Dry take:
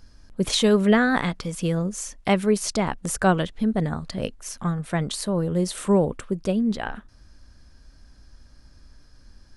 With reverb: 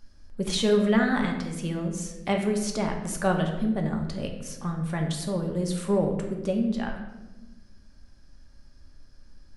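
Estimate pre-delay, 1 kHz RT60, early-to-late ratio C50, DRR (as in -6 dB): 3 ms, 0.95 s, 6.0 dB, 2.0 dB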